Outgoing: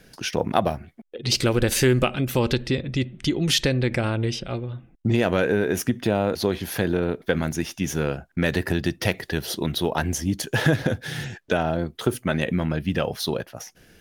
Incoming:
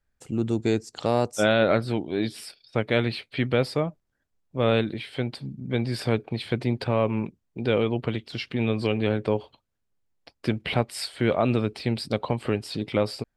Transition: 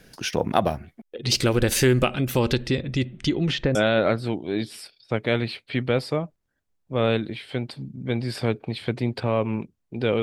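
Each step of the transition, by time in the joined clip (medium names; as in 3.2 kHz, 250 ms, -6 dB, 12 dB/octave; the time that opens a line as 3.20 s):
outgoing
3.16–3.75 s: low-pass 11 kHz -> 1.1 kHz
3.75 s: go over to incoming from 1.39 s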